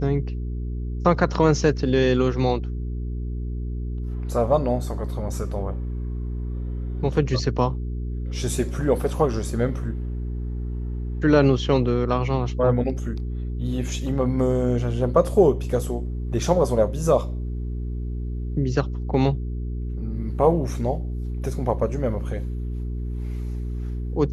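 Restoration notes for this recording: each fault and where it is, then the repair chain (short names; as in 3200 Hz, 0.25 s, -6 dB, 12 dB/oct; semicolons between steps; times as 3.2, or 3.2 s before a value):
hum 60 Hz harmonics 7 -28 dBFS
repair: de-hum 60 Hz, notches 7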